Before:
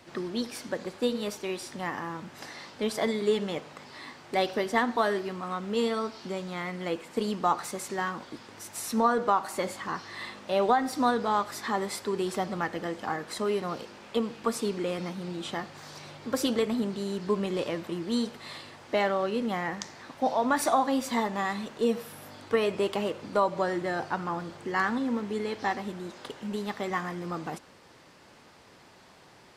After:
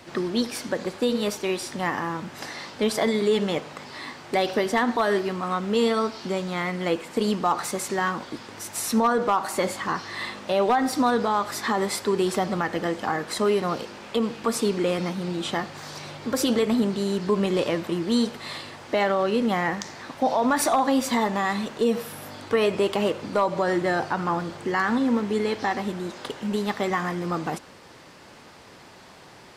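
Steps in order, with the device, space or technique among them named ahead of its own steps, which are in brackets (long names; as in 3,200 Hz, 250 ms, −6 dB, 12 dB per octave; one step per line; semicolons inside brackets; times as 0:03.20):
clipper into limiter (hard clipping −16 dBFS, distortion −26 dB; brickwall limiter −20.5 dBFS, peak gain reduction 4.5 dB)
level +7 dB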